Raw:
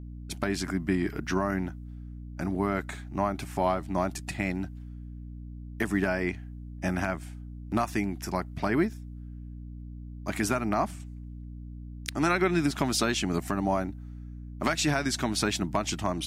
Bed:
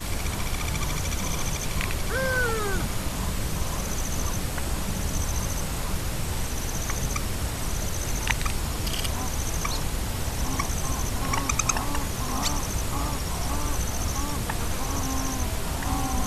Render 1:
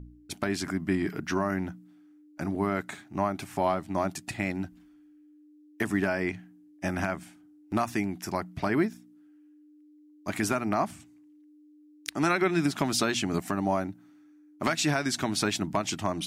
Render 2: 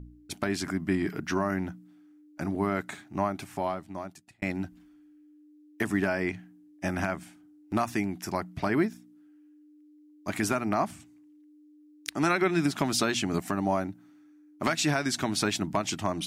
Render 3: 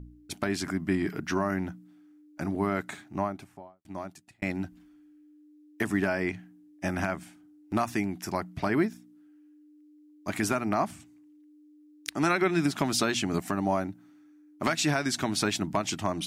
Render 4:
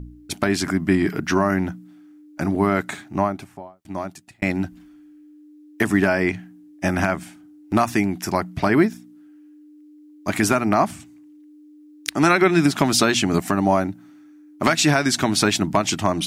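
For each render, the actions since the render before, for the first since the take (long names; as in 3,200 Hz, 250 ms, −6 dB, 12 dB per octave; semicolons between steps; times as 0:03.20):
hum removal 60 Hz, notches 4
0:03.18–0:04.42: fade out
0:03.03–0:03.85: fade out and dull
level +9 dB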